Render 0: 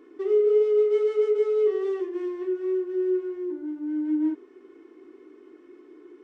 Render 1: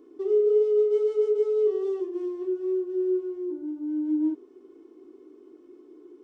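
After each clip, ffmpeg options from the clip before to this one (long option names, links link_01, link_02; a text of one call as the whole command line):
ffmpeg -i in.wav -af "equalizer=frequency=1900:width=1.1:gain=-15" out.wav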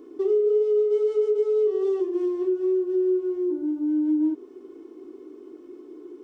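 ffmpeg -i in.wav -af "acompressor=threshold=-28dB:ratio=3,volume=7dB" out.wav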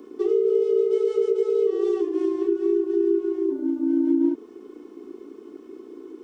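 ffmpeg -i in.wav -filter_complex "[0:a]acrossover=split=570|1000[link_01][link_02][link_03];[link_01]aeval=exprs='val(0)*sin(2*PI*29*n/s)':channel_layout=same[link_04];[link_02]alimiter=level_in=14.5dB:limit=-24dB:level=0:latency=1,volume=-14.5dB[link_05];[link_04][link_05][link_03]amix=inputs=3:normalize=0,volume=5.5dB" out.wav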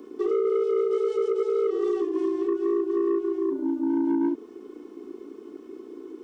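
ffmpeg -i in.wav -af "asoftclip=type=tanh:threshold=-18.5dB" out.wav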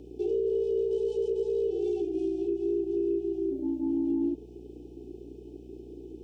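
ffmpeg -i in.wav -af "afftfilt=real='re*(1-between(b*sr/4096,880,2300))':imag='im*(1-between(b*sr/4096,880,2300))':win_size=4096:overlap=0.75,aeval=exprs='val(0)+0.00501*(sin(2*PI*60*n/s)+sin(2*PI*2*60*n/s)/2+sin(2*PI*3*60*n/s)/3+sin(2*PI*4*60*n/s)/4+sin(2*PI*5*60*n/s)/5)':channel_layout=same,volume=-4dB" out.wav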